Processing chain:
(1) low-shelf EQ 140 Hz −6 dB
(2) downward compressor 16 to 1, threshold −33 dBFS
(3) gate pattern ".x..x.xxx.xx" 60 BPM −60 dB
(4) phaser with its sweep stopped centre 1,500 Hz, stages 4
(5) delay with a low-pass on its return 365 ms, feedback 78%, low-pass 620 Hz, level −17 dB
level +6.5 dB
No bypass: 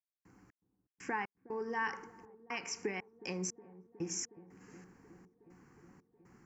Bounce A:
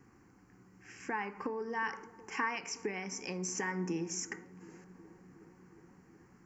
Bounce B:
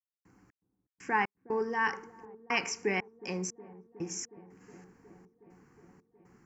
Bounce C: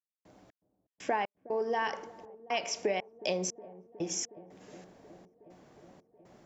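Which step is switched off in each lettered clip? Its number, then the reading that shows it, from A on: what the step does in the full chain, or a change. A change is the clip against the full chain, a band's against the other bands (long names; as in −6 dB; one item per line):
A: 3, 4 kHz band −1.5 dB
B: 2, average gain reduction 3.0 dB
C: 4, 500 Hz band +6.5 dB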